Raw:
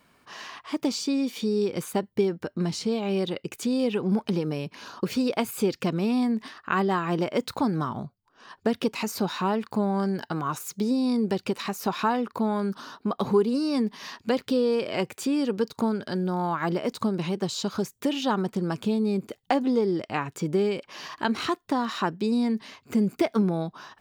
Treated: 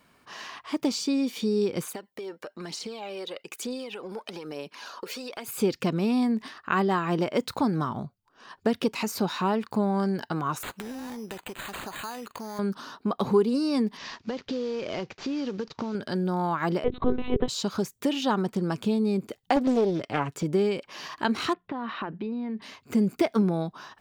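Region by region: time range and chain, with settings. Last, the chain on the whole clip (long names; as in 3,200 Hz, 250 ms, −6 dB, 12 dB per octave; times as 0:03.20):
0:01.87–0:05.48: high-pass filter 440 Hz + downward compressor 4 to 1, threshold −33 dBFS + phase shifter 1.1 Hz, delay 2.3 ms, feedback 45%
0:10.63–0:12.59: spectral tilt +3 dB per octave + downward compressor 3 to 1, threshold −36 dBFS + bad sample-rate conversion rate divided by 8×, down none, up hold
0:13.97–0:15.95: variable-slope delta modulation 32 kbit/s + downward compressor 12 to 1, threshold −26 dBFS
0:16.84–0:17.48: parametric band 420 Hz +12 dB 0.21 octaves + mains-hum notches 60/120/180/240 Hz + one-pitch LPC vocoder at 8 kHz 250 Hz
0:19.56–0:20.43: high-pass filter 44 Hz + comb filter 7.1 ms, depth 36% + highs frequency-modulated by the lows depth 0.49 ms
0:21.53–0:22.62: low-pass filter 3,000 Hz 24 dB per octave + mains-hum notches 60/120/180 Hz + downward compressor 10 to 1, threshold −28 dBFS
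whole clip: no processing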